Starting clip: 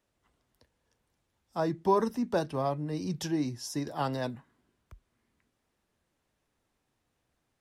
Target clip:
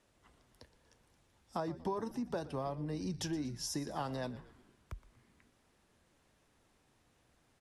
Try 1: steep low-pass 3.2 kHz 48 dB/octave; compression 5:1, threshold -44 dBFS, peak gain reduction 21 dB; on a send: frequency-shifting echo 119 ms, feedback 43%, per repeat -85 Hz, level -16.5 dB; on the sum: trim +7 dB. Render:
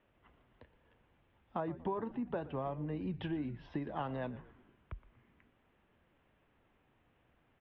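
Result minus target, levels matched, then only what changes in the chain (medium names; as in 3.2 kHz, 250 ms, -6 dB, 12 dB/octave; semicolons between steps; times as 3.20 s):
4 kHz band -10.0 dB
change: steep low-pass 12 kHz 48 dB/octave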